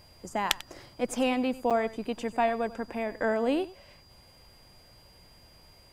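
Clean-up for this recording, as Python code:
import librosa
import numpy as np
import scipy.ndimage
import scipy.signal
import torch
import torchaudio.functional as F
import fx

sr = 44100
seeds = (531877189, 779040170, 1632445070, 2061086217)

y = fx.notch(x, sr, hz=4800.0, q=30.0)
y = fx.fix_interpolate(y, sr, at_s=(1.7,), length_ms=6.8)
y = fx.fix_echo_inverse(y, sr, delay_ms=94, level_db=-17.5)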